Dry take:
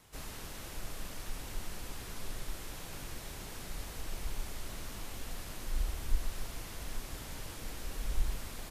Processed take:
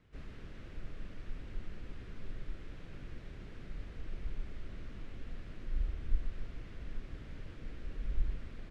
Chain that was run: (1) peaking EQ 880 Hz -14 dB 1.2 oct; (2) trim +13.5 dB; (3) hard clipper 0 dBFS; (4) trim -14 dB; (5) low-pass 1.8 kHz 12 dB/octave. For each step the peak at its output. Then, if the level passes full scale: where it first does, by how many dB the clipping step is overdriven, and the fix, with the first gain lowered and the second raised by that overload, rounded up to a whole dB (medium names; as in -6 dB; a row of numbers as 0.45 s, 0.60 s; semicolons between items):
-16.5 dBFS, -3.0 dBFS, -3.0 dBFS, -17.0 dBFS, -17.5 dBFS; nothing clips